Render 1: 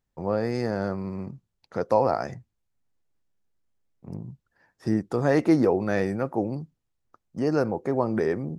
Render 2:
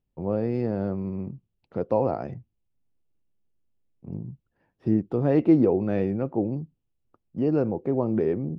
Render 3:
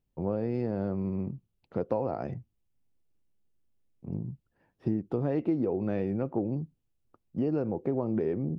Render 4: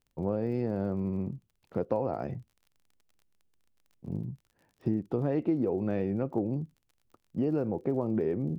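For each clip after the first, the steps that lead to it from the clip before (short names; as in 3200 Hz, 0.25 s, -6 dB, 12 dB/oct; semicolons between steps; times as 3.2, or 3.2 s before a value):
EQ curve 340 Hz 0 dB, 1800 Hz -14 dB, 2800 Hz -4 dB, 6600 Hz -27 dB; gain +2 dB
compressor 6:1, threshold -25 dBFS, peak gain reduction 11.5 dB
crackle 39/s -50 dBFS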